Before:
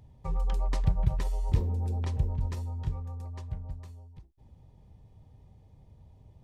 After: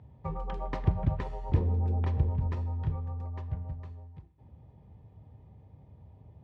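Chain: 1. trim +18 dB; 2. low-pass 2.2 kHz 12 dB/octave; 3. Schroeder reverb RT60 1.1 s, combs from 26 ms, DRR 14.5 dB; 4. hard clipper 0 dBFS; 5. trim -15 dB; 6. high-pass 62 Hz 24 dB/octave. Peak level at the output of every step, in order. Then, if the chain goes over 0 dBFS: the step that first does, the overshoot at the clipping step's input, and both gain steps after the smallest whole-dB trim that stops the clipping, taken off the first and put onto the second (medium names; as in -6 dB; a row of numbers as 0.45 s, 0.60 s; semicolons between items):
+5.5 dBFS, +5.5 dBFS, +5.5 dBFS, 0.0 dBFS, -15.0 dBFS, -11.0 dBFS; step 1, 5.5 dB; step 1 +12 dB, step 5 -9 dB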